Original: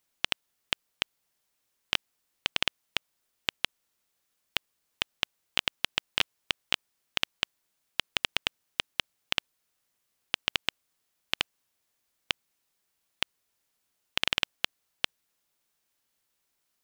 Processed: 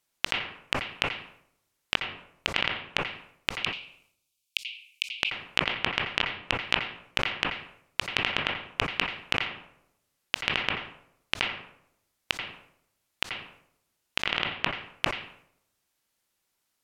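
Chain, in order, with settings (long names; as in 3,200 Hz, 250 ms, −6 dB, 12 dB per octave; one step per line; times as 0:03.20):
treble cut that deepens with the level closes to 2,900 Hz, closed at −33 dBFS
0:03.53–0:05.09: Butterworth high-pass 2,300 Hz 96 dB per octave
convolution reverb RT60 0.85 s, pre-delay 81 ms, DRR 7.5 dB
level that may fall only so fast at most 100 dB per second
level +1 dB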